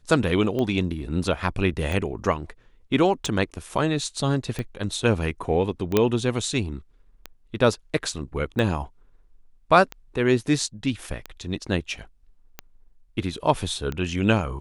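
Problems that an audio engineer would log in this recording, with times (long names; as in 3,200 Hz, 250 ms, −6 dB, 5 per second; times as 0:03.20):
scratch tick 45 rpm −16 dBFS
0:05.97: click −5 dBFS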